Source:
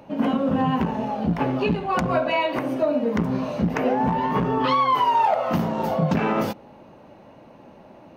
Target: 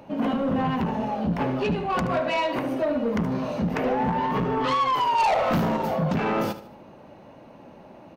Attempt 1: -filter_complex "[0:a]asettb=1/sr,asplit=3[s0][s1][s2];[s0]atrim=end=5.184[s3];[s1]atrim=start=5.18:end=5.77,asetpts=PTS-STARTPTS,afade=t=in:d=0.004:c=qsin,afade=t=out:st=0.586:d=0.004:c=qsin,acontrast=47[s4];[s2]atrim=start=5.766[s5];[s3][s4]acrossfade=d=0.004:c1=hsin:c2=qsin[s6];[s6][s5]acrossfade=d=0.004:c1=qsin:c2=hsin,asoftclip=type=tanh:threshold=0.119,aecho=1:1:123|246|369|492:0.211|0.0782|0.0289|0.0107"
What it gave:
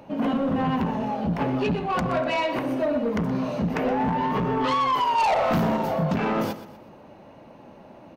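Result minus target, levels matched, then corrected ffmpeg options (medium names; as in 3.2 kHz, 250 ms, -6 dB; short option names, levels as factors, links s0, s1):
echo 48 ms late
-filter_complex "[0:a]asettb=1/sr,asplit=3[s0][s1][s2];[s0]atrim=end=5.184[s3];[s1]atrim=start=5.18:end=5.77,asetpts=PTS-STARTPTS,afade=t=in:d=0.004:c=qsin,afade=t=out:st=0.586:d=0.004:c=qsin,acontrast=47[s4];[s2]atrim=start=5.766[s5];[s3][s4]acrossfade=d=0.004:c1=hsin:c2=qsin[s6];[s6][s5]acrossfade=d=0.004:c1=qsin:c2=hsin,asoftclip=type=tanh:threshold=0.119,aecho=1:1:75|150|225|300:0.211|0.0782|0.0289|0.0107"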